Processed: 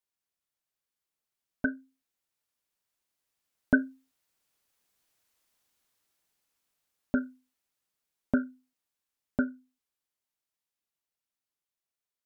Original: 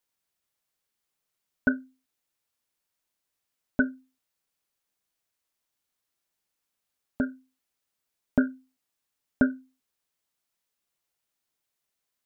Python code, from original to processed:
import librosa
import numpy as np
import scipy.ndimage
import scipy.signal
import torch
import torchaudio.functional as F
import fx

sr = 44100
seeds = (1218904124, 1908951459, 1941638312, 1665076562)

y = fx.doppler_pass(x, sr, speed_mps=6, closest_m=5.7, pass_at_s=5.3)
y = y * 10.0 ** (7.0 / 20.0)